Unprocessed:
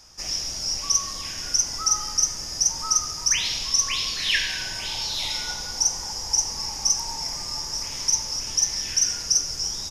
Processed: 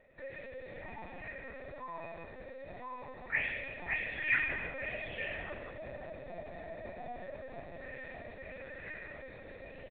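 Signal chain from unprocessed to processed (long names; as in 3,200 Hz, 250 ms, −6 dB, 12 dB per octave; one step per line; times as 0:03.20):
phase-vocoder pitch shift without resampling −4 semitones
formant resonators in series e
repeating echo 161 ms, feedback 52%, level −14.5 dB
linear-prediction vocoder at 8 kHz pitch kept
level +11 dB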